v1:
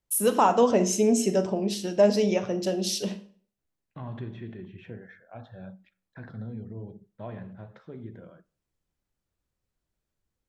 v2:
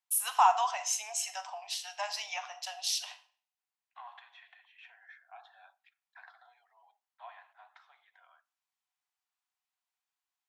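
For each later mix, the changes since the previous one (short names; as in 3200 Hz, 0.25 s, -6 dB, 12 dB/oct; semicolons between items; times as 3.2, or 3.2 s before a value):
master: add rippled Chebyshev high-pass 710 Hz, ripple 3 dB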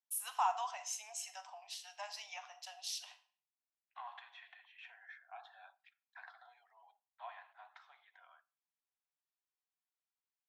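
first voice -10.0 dB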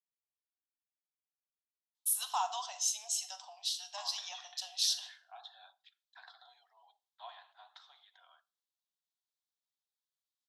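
first voice: entry +1.95 s; master: add resonant high shelf 2900 Hz +8 dB, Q 3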